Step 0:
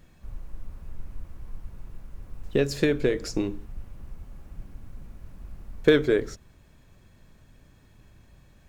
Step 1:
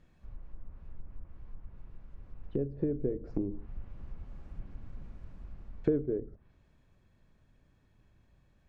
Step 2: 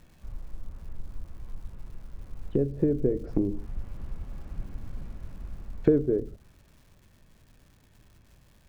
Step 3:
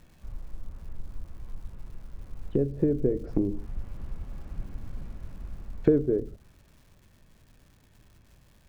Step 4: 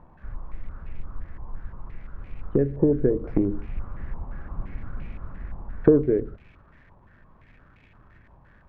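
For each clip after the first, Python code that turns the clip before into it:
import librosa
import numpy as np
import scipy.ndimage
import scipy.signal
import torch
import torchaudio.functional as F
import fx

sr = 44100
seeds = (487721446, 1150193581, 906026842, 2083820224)

y1 = fx.lowpass(x, sr, hz=3300.0, slope=6)
y1 = fx.env_lowpass_down(y1, sr, base_hz=390.0, full_db=-23.5)
y1 = fx.rider(y1, sr, range_db=10, speed_s=2.0)
y1 = y1 * librosa.db_to_amplitude(-6.5)
y2 = fx.dmg_crackle(y1, sr, seeds[0], per_s=360.0, level_db=-58.0)
y2 = y2 * librosa.db_to_amplitude(7.0)
y3 = y2
y4 = fx.filter_held_lowpass(y3, sr, hz=5.8, low_hz=960.0, high_hz=2400.0)
y4 = y4 * librosa.db_to_amplitude(3.5)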